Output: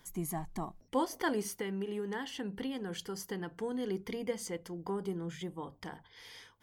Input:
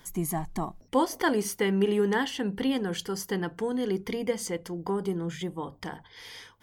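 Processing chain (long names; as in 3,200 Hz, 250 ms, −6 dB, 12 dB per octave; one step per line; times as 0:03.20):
0:01.46–0:03.57: downward compressor, threshold −27 dBFS, peak gain reduction 8 dB
level −7 dB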